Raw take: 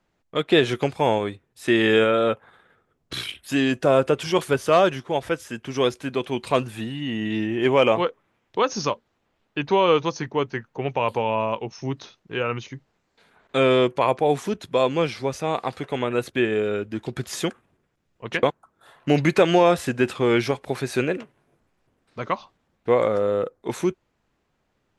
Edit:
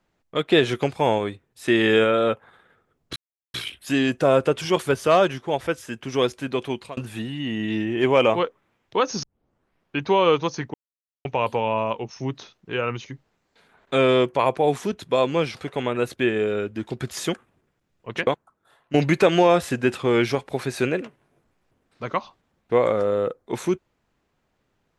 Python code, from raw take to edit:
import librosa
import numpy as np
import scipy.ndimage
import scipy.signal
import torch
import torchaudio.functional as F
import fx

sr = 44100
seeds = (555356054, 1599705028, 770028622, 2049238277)

y = fx.edit(x, sr, fx.insert_silence(at_s=3.16, length_s=0.38),
    fx.fade_out_span(start_s=6.3, length_s=0.29),
    fx.tape_start(start_s=8.85, length_s=0.77),
    fx.silence(start_s=10.36, length_s=0.51),
    fx.cut(start_s=15.17, length_s=0.54),
    fx.fade_out_to(start_s=18.26, length_s=0.84, floor_db=-13.0), tone=tone)